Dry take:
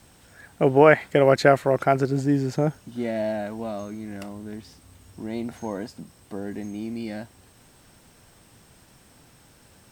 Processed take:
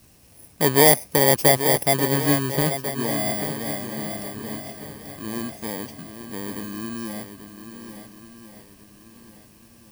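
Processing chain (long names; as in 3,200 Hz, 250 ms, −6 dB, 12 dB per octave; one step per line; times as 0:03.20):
samples in bit-reversed order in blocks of 32 samples
feedback echo with a long and a short gap by turns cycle 1,394 ms, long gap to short 1.5 to 1, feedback 33%, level −9.5 dB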